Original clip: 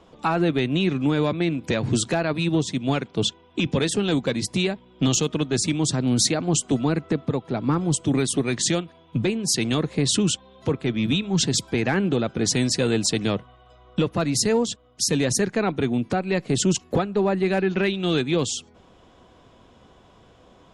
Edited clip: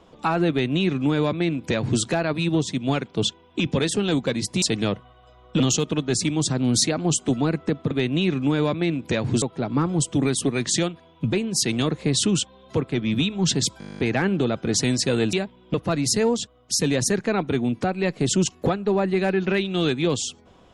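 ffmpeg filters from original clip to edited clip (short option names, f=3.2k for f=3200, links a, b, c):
-filter_complex "[0:a]asplit=17[a][b][c][d][e][f][g][h][i][j][k][l][m][n][o][p][q];[a]atrim=end=4.622[r];[b]atrim=start=13.048:end=14.032[s];[c]atrim=start=5.028:end=7.342[t];[d]atrim=start=0.498:end=2.012[u];[e]atrim=start=7.338:end=11.732[v];[f]atrim=start=11.708:end=11.732[w];[g]atrim=start=11.708:end=11.732[x];[h]atrim=start=11.708:end=11.732[y];[i]atrim=start=11.708:end=11.732[z];[j]atrim=start=11.708:end=11.732[aa];[k]atrim=start=11.708:end=11.732[ab];[l]atrim=start=11.708:end=11.732[ac];[m]atrim=start=11.708:end=11.732[ad];[n]atrim=start=11.708:end=11.732[ae];[o]atrim=start=11.708:end=13.052[af];[p]atrim=start=4.618:end=5.032[ag];[q]atrim=start=14.028[ah];[r][s]acrossfade=d=0.004:c1=hsin:c2=hsin[ai];[ai][t]acrossfade=d=0.004:c1=hsin:c2=hsin[aj];[aj][u]acrossfade=d=0.004:c1=hsin:c2=hsin[ak];[ak][v]acrossfade=d=0.004:c1=hsin:c2=hsin[al];[al][w]acrossfade=d=0.004:c1=hsin:c2=hsin[am];[am][x]acrossfade=d=0.004:c1=hsin:c2=hsin[an];[an][y]acrossfade=d=0.004:c1=hsin:c2=hsin[ao];[ao][z]acrossfade=d=0.004:c1=hsin:c2=hsin[ap];[ap][aa]acrossfade=d=0.004:c1=hsin:c2=hsin[aq];[aq][ab]acrossfade=d=0.004:c1=hsin:c2=hsin[ar];[ar][ac]acrossfade=d=0.004:c1=hsin:c2=hsin[as];[as][ad]acrossfade=d=0.004:c1=hsin:c2=hsin[at];[at][ae]acrossfade=d=0.004:c1=hsin:c2=hsin[au];[au][af]acrossfade=d=0.004:c1=hsin:c2=hsin[av];[av][ag]acrossfade=d=0.004:c1=hsin:c2=hsin[aw];[aw][ah]acrossfade=d=0.004:c1=hsin:c2=hsin"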